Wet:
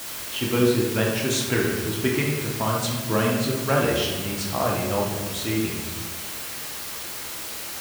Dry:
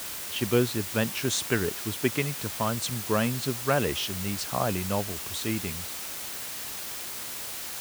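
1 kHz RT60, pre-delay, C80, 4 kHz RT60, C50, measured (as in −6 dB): 1.2 s, 3 ms, 4.5 dB, 0.85 s, 2.0 dB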